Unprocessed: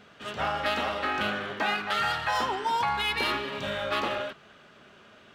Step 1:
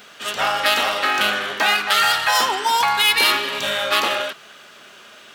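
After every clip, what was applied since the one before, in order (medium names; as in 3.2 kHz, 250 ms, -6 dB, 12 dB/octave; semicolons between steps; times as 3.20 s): RIAA curve recording; trim +8.5 dB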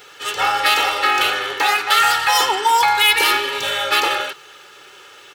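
comb 2.3 ms, depth 95%; trim -1 dB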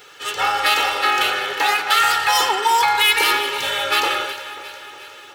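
echo whose repeats swap between lows and highs 180 ms, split 2 kHz, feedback 75%, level -11 dB; trim -1.5 dB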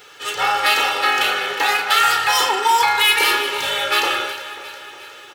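doubling 34 ms -8 dB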